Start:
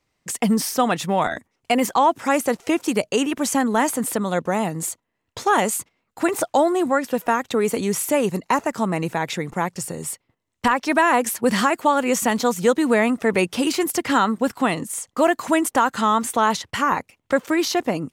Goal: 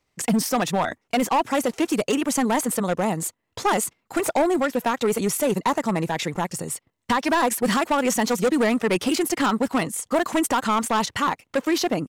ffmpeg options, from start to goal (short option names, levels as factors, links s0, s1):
-af "volume=5.96,asoftclip=hard,volume=0.168,atempo=1.5"